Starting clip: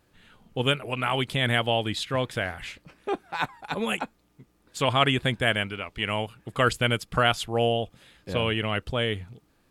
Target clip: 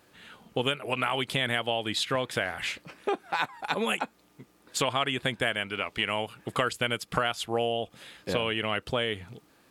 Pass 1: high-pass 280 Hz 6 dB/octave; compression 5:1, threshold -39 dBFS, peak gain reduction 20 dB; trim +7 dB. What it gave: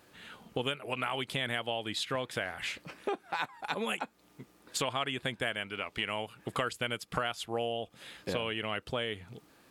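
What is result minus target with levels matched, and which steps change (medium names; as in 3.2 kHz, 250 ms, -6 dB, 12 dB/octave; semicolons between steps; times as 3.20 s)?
compression: peak gain reduction +5.5 dB
change: compression 5:1, threshold -32 dBFS, peak gain reduction 14.5 dB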